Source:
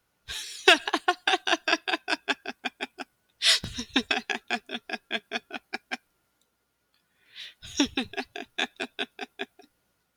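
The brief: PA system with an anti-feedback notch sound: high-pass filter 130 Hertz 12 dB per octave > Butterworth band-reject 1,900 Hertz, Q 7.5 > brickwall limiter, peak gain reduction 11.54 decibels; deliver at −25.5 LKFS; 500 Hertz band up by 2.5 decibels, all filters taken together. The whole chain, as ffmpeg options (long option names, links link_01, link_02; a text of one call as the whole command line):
ffmpeg -i in.wav -af "highpass=130,asuperstop=centerf=1900:order=8:qfactor=7.5,equalizer=frequency=500:width_type=o:gain=4,volume=5.5dB,alimiter=limit=-8.5dB:level=0:latency=1" out.wav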